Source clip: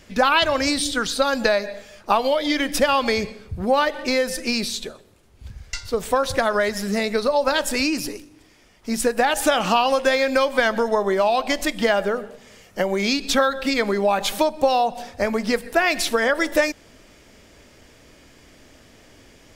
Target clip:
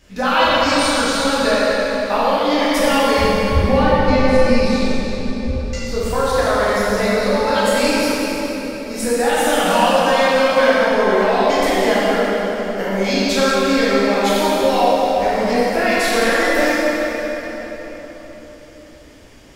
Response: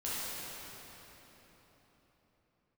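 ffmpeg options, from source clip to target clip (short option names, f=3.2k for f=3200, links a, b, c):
-filter_complex "[0:a]asettb=1/sr,asplit=3[a][b][c];[a]atrim=end=3.184[d];[b]atrim=start=3.18:end=5.6,asetpts=PTS-STARTPTS,afade=t=in:d=0.004:c=qsin,afade=t=out:st=2.416:d=0.004:c=qsin,aemphasis=mode=reproduction:type=bsi[e];[c]atrim=start=5.596[f];[d][e]acrossfade=d=0.004:c1=hsin:c2=qsin[g];[g][f]acrossfade=d=0.004:c1=qsin:c2=hsin[h];[1:a]atrim=start_sample=2205[i];[h][i]afir=irnorm=-1:irlink=0,volume=-1dB"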